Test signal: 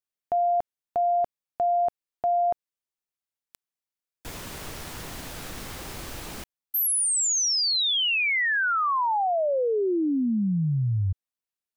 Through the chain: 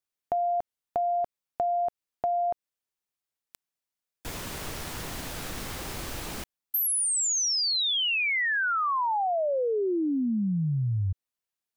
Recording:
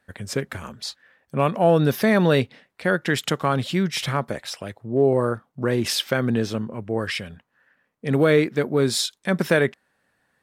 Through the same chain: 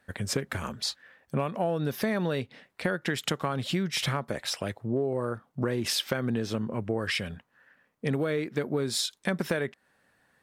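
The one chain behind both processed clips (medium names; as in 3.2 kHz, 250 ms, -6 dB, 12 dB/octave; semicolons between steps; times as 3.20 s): compression 12:1, threshold -26 dBFS; trim +1.5 dB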